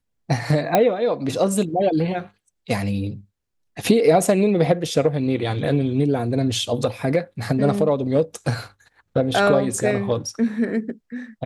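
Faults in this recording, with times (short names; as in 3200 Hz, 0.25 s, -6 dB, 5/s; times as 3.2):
0.75 pop -3 dBFS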